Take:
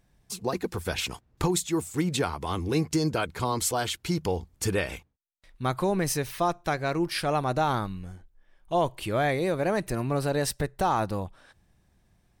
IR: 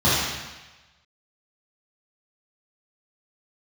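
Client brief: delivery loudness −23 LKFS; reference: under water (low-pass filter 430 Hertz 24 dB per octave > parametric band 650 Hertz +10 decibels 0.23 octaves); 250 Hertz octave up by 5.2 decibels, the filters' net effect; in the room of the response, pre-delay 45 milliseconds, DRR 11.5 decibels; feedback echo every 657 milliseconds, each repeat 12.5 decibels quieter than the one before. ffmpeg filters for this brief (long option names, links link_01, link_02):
-filter_complex "[0:a]equalizer=frequency=250:width_type=o:gain=8,aecho=1:1:657|1314|1971:0.237|0.0569|0.0137,asplit=2[link_01][link_02];[1:a]atrim=start_sample=2205,adelay=45[link_03];[link_02][link_03]afir=irnorm=-1:irlink=0,volume=-32dB[link_04];[link_01][link_04]amix=inputs=2:normalize=0,lowpass=frequency=430:width=0.5412,lowpass=frequency=430:width=1.3066,equalizer=frequency=650:width_type=o:width=0.23:gain=10,volume=4dB"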